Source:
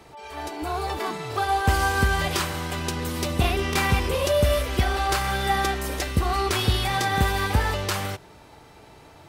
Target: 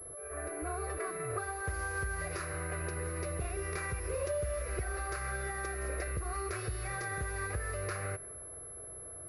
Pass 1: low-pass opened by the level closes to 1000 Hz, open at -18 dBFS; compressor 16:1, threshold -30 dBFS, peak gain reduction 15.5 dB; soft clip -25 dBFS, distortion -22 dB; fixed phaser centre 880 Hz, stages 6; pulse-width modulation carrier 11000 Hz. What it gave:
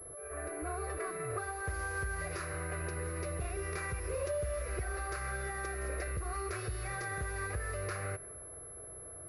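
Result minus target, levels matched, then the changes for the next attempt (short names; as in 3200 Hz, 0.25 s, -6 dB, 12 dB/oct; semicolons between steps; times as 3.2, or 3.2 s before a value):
soft clip: distortion +13 dB
change: soft clip -17 dBFS, distortion -35 dB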